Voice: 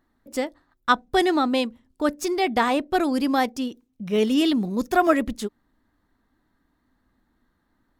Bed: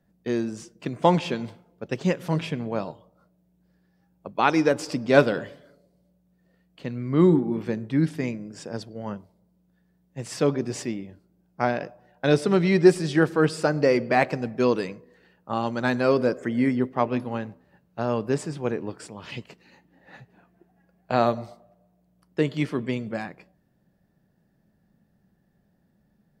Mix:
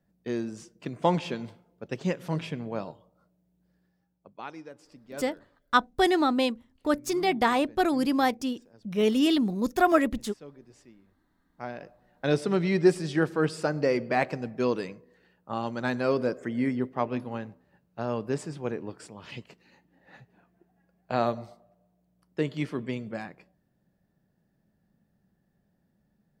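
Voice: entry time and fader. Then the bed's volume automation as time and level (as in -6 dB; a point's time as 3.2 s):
4.85 s, -2.5 dB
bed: 3.86 s -5 dB
4.66 s -24.5 dB
11 s -24.5 dB
12.19 s -5 dB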